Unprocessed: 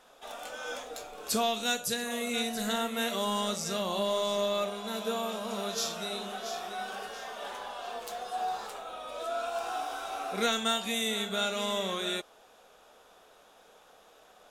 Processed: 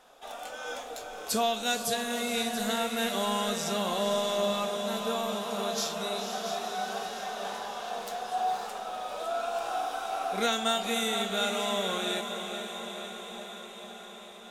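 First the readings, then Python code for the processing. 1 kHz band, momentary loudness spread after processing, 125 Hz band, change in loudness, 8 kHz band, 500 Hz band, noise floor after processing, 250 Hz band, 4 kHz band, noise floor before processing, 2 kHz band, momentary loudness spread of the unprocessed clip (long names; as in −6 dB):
+3.0 dB, 12 LU, +1.5 dB, +1.5 dB, +1.5 dB, +2.0 dB, −46 dBFS, +1.5 dB, +1.0 dB, −59 dBFS, +1.5 dB, 11 LU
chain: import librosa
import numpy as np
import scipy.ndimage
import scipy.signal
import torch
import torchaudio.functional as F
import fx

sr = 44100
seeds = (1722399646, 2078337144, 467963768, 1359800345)

p1 = fx.peak_eq(x, sr, hz=760.0, db=4.0, octaves=0.28)
y = p1 + fx.echo_diffused(p1, sr, ms=501, feedback_pct=70, wet_db=-7.5, dry=0)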